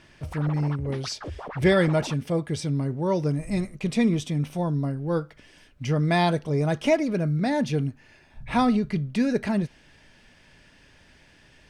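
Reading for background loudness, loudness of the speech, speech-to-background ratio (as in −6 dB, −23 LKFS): −39.5 LKFS, −25.5 LKFS, 14.0 dB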